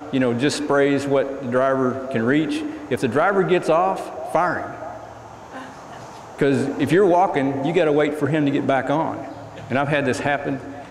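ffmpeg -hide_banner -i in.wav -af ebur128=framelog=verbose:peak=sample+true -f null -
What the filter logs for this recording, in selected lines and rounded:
Integrated loudness:
  I:         -20.3 LUFS
  Threshold: -31.1 LUFS
Loudness range:
  LRA:         4.0 LU
  Threshold: -41.0 LUFS
  LRA low:   -23.5 LUFS
  LRA high:  -19.5 LUFS
Sample peak:
  Peak:       -5.2 dBFS
True peak:
  Peak:       -5.2 dBFS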